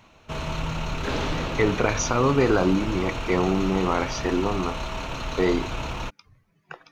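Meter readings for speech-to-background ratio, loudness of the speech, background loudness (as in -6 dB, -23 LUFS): 6.5 dB, -24.5 LUFS, -31.0 LUFS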